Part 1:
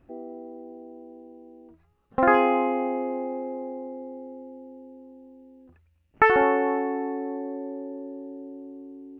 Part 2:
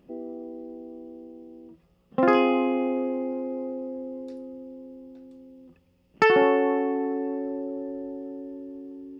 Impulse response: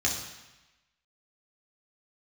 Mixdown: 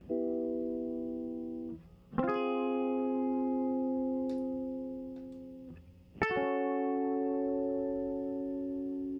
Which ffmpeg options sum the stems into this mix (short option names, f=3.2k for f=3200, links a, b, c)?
-filter_complex "[0:a]lowpass=f=2.8k:w=0.5412,lowpass=f=2.8k:w=1.3066,asplit=2[a][b];[b]afreqshift=0.34[c];[a][c]amix=inputs=2:normalize=1,volume=-3dB[d];[1:a]volume=-1,adelay=11,volume=1dB[e];[d][e]amix=inputs=2:normalize=0,equalizer=f=89:w=0.47:g=9,acompressor=threshold=-28dB:ratio=20"